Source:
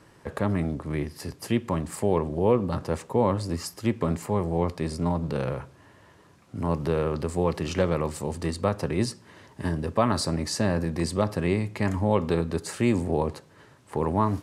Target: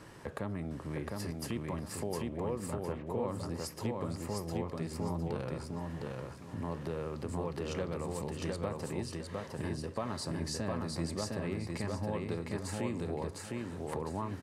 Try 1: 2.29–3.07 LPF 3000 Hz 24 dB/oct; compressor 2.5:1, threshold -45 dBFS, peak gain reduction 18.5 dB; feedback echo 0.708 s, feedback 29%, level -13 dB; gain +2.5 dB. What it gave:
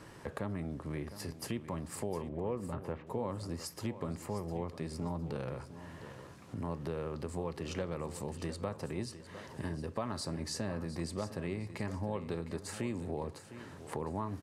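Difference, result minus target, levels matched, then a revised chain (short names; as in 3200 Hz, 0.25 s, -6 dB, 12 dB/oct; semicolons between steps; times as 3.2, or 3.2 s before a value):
echo-to-direct -10.5 dB
2.29–3.07 LPF 3000 Hz 24 dB/oct; compressor 2.5:1, threshold -45 dBFS, peak gain reduction 18.5 dB; feedback echo 0.708 s, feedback 29%, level -2.5 dB; gain +2.5 dB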